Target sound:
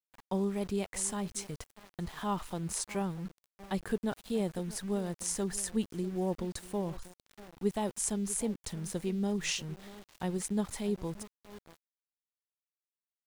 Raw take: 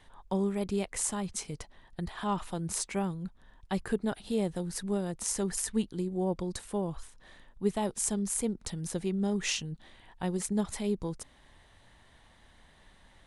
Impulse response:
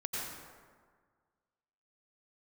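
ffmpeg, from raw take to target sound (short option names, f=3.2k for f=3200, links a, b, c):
-filter_complex "[0:a]asplit=2[a][b];[b]adelay=641.4,volume=-17dB,highshelf=f=4k:g=-14.4[c];[a][c]amix=inputs=2:normalize=0,aeval=exprs='val(0)*gte(abs(val(0)),0.00562)':c=same,volume=-2dB"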